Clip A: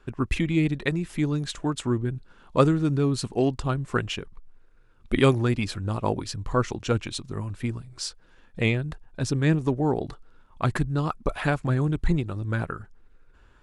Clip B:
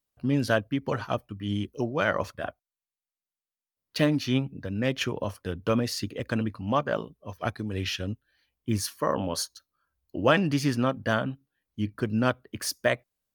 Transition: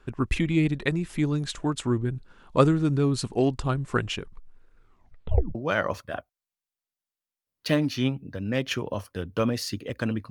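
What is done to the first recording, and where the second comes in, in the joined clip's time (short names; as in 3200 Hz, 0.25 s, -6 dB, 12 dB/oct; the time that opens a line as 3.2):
clip A
4.78 tape stop 0.77 s
5.55 switch to clip B from 1.85 s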